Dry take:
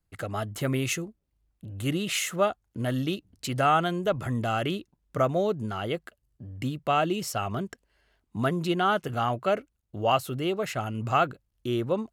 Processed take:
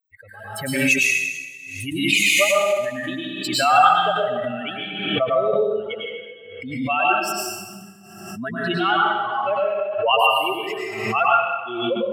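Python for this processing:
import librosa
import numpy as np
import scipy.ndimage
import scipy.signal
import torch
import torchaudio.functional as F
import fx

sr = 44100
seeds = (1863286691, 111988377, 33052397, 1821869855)

y = fx.bin_expand(x, sr, power=3.0)
y = scipy.signal.sosfilt(scipy.signal.butter(2, 390.0, 'highpass', fs=sr, output='sos'), y)
y = fx.peak_eq(y, sr, hz=2500.0, db=14.0, octaves=0.37)
y = fx.rev_plate(y, sr, seeds[0], rt60_s=1.3, hf_ratio=0.9, predelay_ms=90, drr_db=-5.0)
y = fx.pre_swell(y, sr, db_per_s=47.0)
y = F.gain(torch.from_numpy(y), 7.5).numpy()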